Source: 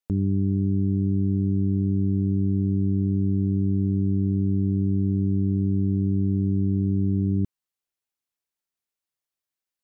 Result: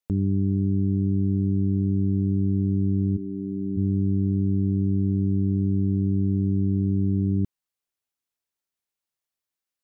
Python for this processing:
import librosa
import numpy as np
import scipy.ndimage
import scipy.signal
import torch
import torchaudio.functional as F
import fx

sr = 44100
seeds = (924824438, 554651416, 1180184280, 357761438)

y = fx.highpass(x, sr, hz=fx.line((3.16, 340.0), (3.76, 200.0)), slope=12, at=(3.16, 3.76), fade=0.02)